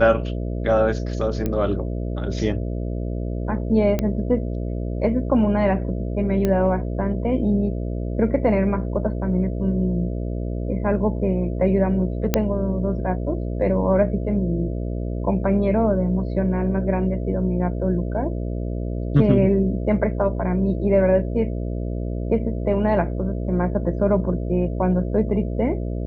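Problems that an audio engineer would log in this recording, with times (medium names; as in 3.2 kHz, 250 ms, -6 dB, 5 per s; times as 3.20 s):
buzz 60 Hz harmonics 11 -26 dBFS
1.46 s: pop -12 dBFS
3.99 s: pop -10 dBFS
6.45 s: pop -10 dBFS
12.34 s: pop -3 dBFS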